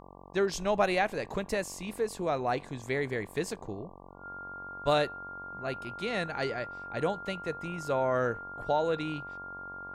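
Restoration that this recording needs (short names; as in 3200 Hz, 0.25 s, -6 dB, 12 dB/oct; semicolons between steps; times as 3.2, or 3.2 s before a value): de-hum 46.5 Hz, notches 25; notch 1400 Hz, Q 30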